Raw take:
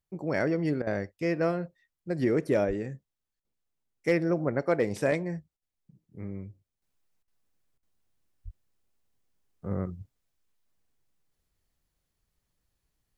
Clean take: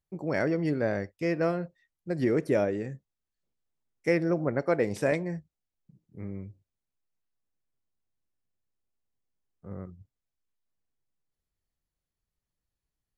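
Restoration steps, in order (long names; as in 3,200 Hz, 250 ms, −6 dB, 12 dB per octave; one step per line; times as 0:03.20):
clipped peaks rebuilt −15 dBFS
0:02.67–0:02.79: high-pass filter 140 Hz 24 dB per octave
0:08.44–0:08.56: high-pass filter 140 Hz 24 dB per octave
repair the gap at 0:00.82/0:03.40/0:05.57/0:07.23/0:07.78, 46 ms
0:06.82: level correction −8.5 dB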